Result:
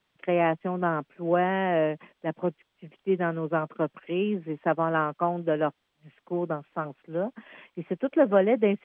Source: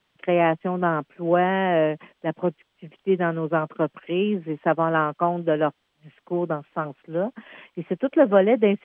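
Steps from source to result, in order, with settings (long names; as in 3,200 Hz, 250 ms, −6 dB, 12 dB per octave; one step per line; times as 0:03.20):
notch filter 3,000 Hz, Q 28
level −4 dB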